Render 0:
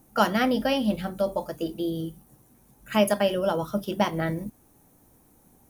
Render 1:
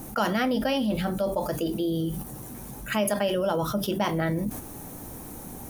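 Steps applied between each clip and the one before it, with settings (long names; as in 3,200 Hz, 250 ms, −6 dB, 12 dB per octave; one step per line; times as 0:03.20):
noise gate −46 dBFS, range −15 dB
envelope flattener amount 70%
level −6 dB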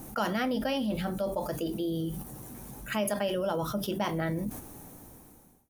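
fade-out on the ending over 1.19 s
level −4.5 dB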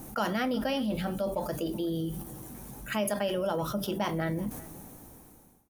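slap from a distant wall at 65 metres, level −20 dB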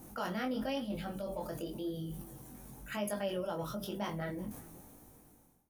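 chorus effect 0.97 Hz, delay 19.5 ms, depth 4.3 ms
level −4.5 dB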